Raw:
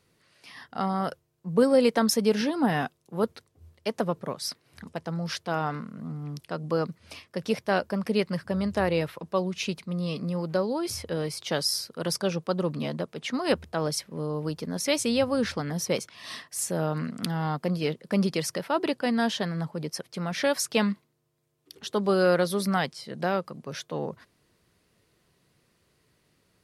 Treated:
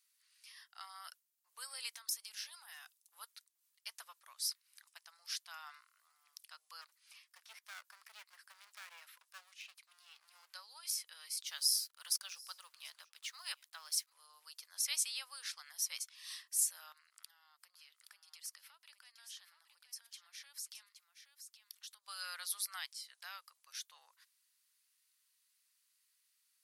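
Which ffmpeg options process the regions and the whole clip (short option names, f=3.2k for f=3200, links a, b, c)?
-filter_complex "[0:a]asettb=1/sr,asplit=3[a][b][c];[a]atrim=end=1.934[d];[b]atrim=start=1.93:end=3.15,asetpts=PTS-STARTPTS,afade=t=in:d=0.004:c=qsin,afade=t=out:st=1.216:d=0.004:c=qsin,bass=f=250:g=-13,treble=f=4k:g=3,acompressor=threshold=-30dB:ratio=5:attack=3.2:release=140:knee=1:detection=peak,asoftclip=type=hard:threshold=-24.5dB[e];[c]atrim=start=3.146[f];[d][e]acrossfade=d=0.004:c1=hsin:c2=qsin[g];[g][f]acrossfade=d=0.004:c1=qsin:c2=hsin,asettb=1/sr,asplit=3[h][i][j];[h]atrim=end=6.814[k];[i]atrim=start=6.81:end=10.49,asetpts=PTS-STARTPTS,afade=t=in:d=0.004:c=qsin,afade=t=out:st=3.676:d=0.004:c=qsin,acrossover=split=2500[l][m];[m]acompressor=threshold=-53dB:ratio=4:attack=1:release=60[n];[l][n]amix=inputs=2:normalize=0,lowshelf=f=190:g=8.5,aeval=exprs='clip(val(0),-1,0.02)':c=same[o];[j]atrim=start=10.486[p];[k][o]acrossfade=d=0.004:c1=hsin:c2=qsin[q];[q][p]acrossfade=d=0.004:c1=qsin:c2=hsin,asettb=1/sr,asplit=3[r][s][t];[r]atrim=end=11.474[u];[s]atrim=start=11.47:end=14.13,asetpts=PTS-STARTPTS,afade=t=in:d=0.004:c=qsin,afade=t=out:st=2.656:d=0.004:c=qsin,aeval=exprs='sgn(val(0))*max(abs(val(0))-0.0015,0)':c=same,aecho=1:1:738:0.0708,atrim=end_sample=117306[v];[t]atrim=start=14.126[w];[u][v]acrossfade=d=0.004:c1=hsin:c2=qsin[x];[x][w]acrossfade=d=0.004:c1=qsin:c2=hsin,asettb=1/sr,asplit=3[y][z][aa];[y]atrim=end=16.924[ab];[z]atrim=start=16.92:end=22.08,asetpts=PTS-STARTPTS,afade=t=in:d=0.004:c=qsin,afade=t=out:st=5.156:d=0.004:c=qsin,acompressor=threshold=-38dB:ratio=8:attack=3.2:release=140:knee=1:detection=peak,aecho=1:1:821:0.376,atrim=end_sample=227556[ac];[aa]atrim=start=22.076[ad];[ab][ac]acrossfade=d=0.004:c1=hsin:c2=qsin[ae];[ae][ad]acrossfade=d=0.004:c1=qsin:c2=hsin,highpass=f=1k:w=0.5412,highpass=f=1k:w=1.3066,aderivative,volume=-2.5dB"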